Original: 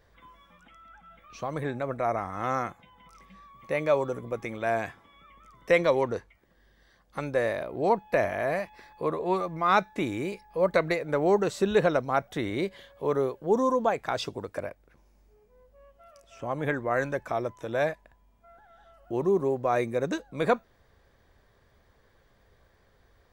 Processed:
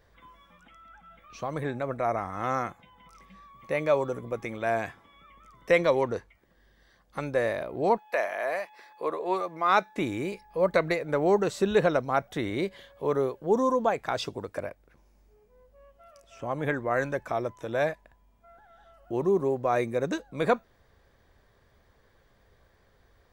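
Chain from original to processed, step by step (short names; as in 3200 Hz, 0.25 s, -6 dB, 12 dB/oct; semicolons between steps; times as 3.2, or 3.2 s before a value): 7.96–9.96 HPF 690 Hz -> 240 Hz 12 dB/oct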